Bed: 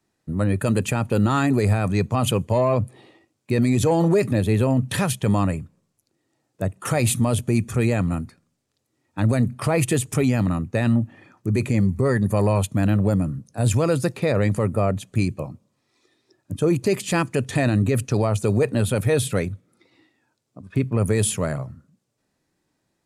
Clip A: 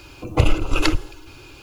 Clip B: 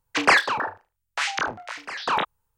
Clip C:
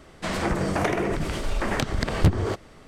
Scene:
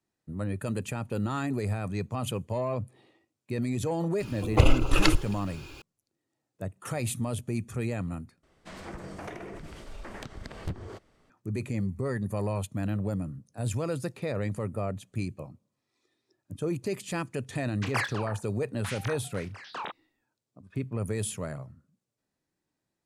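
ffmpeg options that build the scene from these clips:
-filter_complex "[0:a]volume=0.282,asplit=2[s0][s1];[s0]atrim=end=8.434[s2];[3:a]atrim=end=2.87,asetpts=PTS-STARTPTS,volume=0.158[s3];[s1]atrim=start=11.296[s4];[1:a]atrim=end=1.62,asetpts=PTS-STARTPTS,volume=0.708,afade=t=in:d=0.004:c=hsin,afade=t=out:st=1.616:d=0.004:c=hsin,adelay=4200[s5];[2:a]atrim=end=2.57,asetpts=PTS-STARTPTS,volume=0.211,afade=t=in:d=0.004:c=hsin,afade=t=out:st=2.566:d=0.004:c=hsin,adelay=17670[s6];[s2][s3]acrossfade=d=0.004:c1=hsin:c2=hsin[s7];[s7][s4]acrossfade=d=0.004:c1=hsin:c2=hsin[s8];[s8][s5][s6]amix=inputs=3:normalize=0"

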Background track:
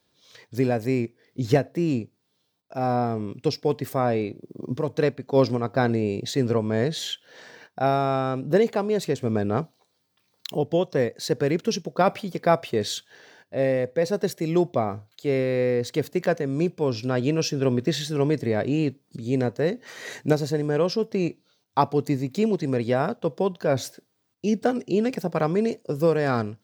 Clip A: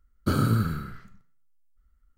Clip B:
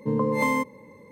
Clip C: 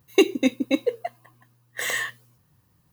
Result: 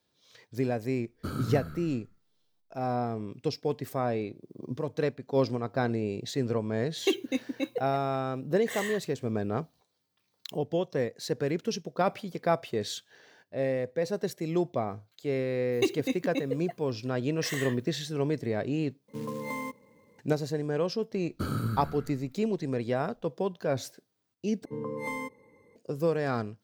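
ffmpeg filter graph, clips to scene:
-filter_complex "[1:a]asplit=2[s0][s1];[3:a]asplit=2[s2][s3];[2:a]asplit=2[s4][s5];[0:a]volume=0.473[s6];[s4]acrusher=bits=4:mode=log:mix=0:aa=0.000001[s7];[s5]aecho=1:1:2.5:0.42[s8];[s6]asplit=3[s9][s10][s11];[s9]atrim=end=19.084[s12];[s7]atrim=end=1.11,asetpts=PTS-STARTPTS,volume=0.251[s13];[s10]atrim=start=20.186:end=24.654[s14];[s8]atrim=end=1.11,asetpts=PTS-STARTPTS,volume=0.282[s15];[s11]atrim=start=25.756[s16];[s0]atrim=end=2.17,asetpts=PTS-STARTPTS,volume=0.282,afade=t=in:d=0.004:c=hsin,afade=t=out:st=2.166:d=0.004:c=hsin,adelay=970[s17];[s2]atrim=end=2.92,asetpts=PTS-STARTPTS,volume=0.335,afade=t=in:d=0.004:c=hsin,afade=t=out:st=2.916:d=0.004:c=hsin,adelay=6890[s18];[s3]atrim=end=2.92,asetpts=PTS-STARTPTS,volume=0.335,afade=t=in:d=0.004:c=hsin,afade=t=out:st=2.916:d=0.004:c=hsin,adelay=15640[s19];[s1]atrim=end=2.17,asetpts=PTS-STARTPTS,volume=0.398,afade=t=in:d=0.004:c=hsin,afade=t=out:st=2.166:d=0.004:c=hsin,adelay=21130[s20];[s12][s13]acrossfade=d=0.004:c1=hsin:c2=hsin[s21];[s21][s14]acrossfade=d=0.004:c1=hsin:c2=hsin[s22];[s22][s15]acrossfade=d=0.004:c1=hsin:c2=hsin[s23];[s23][s16]acrossfade=d=0.004:c1=hsin:c2=hsin[s24];[s24][s17][s18][s19][s20]amix=inputs=5:normalize=0"

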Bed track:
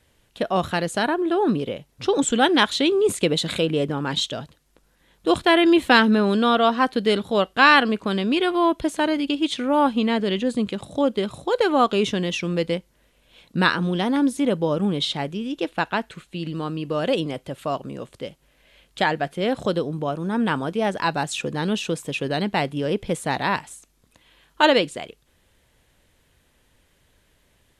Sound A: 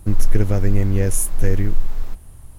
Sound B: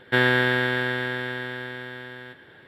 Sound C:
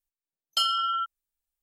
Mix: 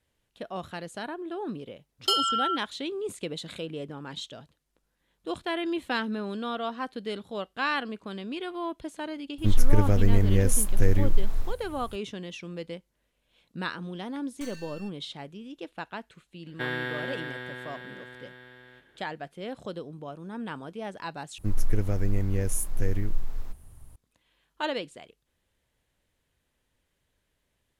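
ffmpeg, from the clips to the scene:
-filter_complex "[3:a]asplit=2[s0][s1];[1:a]asplit=2[s2][s3];[0:a]volume=0.2[s4];[s1]aeval=exprs='abs(val(0))':c=same[s5];[s4]asplit=2[s6][s7];[s6]atrim=end=21.384[s8];[s3]atrim=end=2.58,asetpts=PTS-STARTPTS,volume=0.355[s9];[s7]atrim=start=23.956[s10];[s0]atrim=end=1.62,asetpts=PTS-STARTPTS,afade=t=in:d=0.004:c=hsin,afade=t=out:st=1.616:d=0.004:c=hsin,adelay=1510[s11];[s2]atrim=end=2.58,asetpts=PTS-STARTPTS,volume=0.668,afade=t=in:d=0.004:c=hsin,afade=t=out:st=2.576:d=0.004:c=hsin,adelay=413658S[s12];[s5]atrim=end=1.62,asetpts=PTS-STARTPTS,volume=0.133,afade=t=in:d=0.004:c=hsin,afade=t=out:st=1.616:d=0.004:c=hsin,adelay=13840[s13];[2:a]atrim=end=2.67,asetpts=PTS-STARTPTS,volume=0.251,afade=t=in:d=0.004:c=hsin,afade=t=out:st=2.666:d=0.004:c=hsin,adelay=16470[s14];[s8][s9]acrossfade=d=0.004:c1=hsin:c2=hsin[s15];[s15][s10]acrossfade=d=0.004:c1=hsin:c2=hsin[s16];[s16][s11][s12][s13][s14]amix=inputs=5:normalize=0"

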